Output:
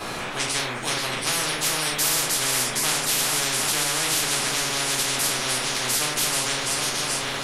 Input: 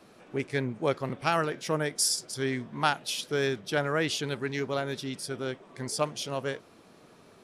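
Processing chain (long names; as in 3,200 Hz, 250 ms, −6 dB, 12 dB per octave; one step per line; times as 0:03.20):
feedback delay that plays each chunk backwards 384 ms, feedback 71%, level −13.5 dB
rectangular room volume 180 cubic metres, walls furnished, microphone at 3.9 metres
every bin compressed towards the loudest bin 10 to 1
level −5 dB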